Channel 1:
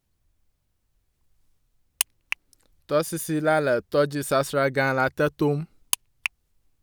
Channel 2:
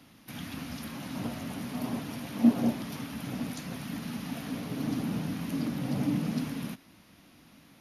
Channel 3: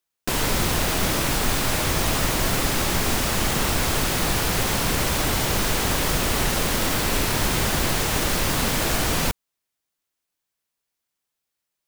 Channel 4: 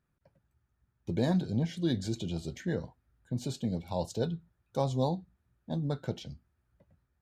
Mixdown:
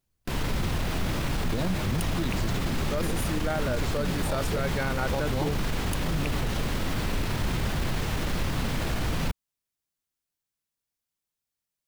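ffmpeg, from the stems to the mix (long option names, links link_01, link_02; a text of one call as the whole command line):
ffmpeg -i stem1.wav -i stem2.wav -i stem3.wav -i stem4.wav -filter_complex "[0:a]volume=-5dB[link_01];[1:a]adelay=250,volume=-14.5dB[link_02];[2:a]acrossover=split=4200[link_03][link_04];[link_04]acompressor=threshold=-38dB:ratio=4:attack=1:release=60[link_05];[link_03][link_05]amix=inputs=2:normalize=0,bass=frequency=250:gain=8,treble=frequency=4000:gain=3,volume=-8dB[link_06];[3:a]adelay=350,volume=1dB[link_07];[link_01][link_02][link_06][link_07]amix=inputs=4:normalize=0,alimiter=limit=-19dB:level=0:latency=1:release=14" out.wav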